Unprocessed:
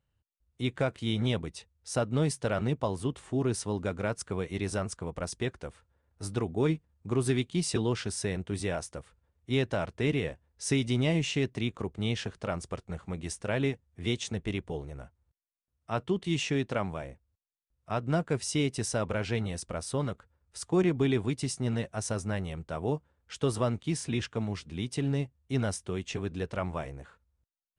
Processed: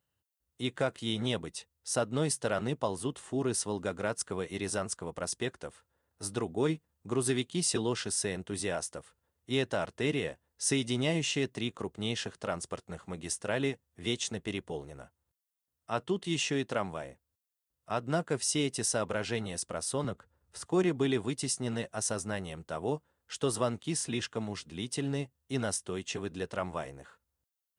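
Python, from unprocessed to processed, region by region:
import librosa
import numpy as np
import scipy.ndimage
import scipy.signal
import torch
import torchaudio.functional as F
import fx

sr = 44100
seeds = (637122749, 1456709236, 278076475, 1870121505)

y = fx.chain(x, sr, fx.tilt_eq(slope=-1.5),
    fx.band_squash(depth_pct=40), at=(20.04, 20.66))
y = fx.highpass(y, sr, hz=240.0, slope=6)
y = fx.high_shelf(y, sr, hz=7800.0, db=9.5)
y = fx.notch(y, sr, hz=2300.0, q=11.0)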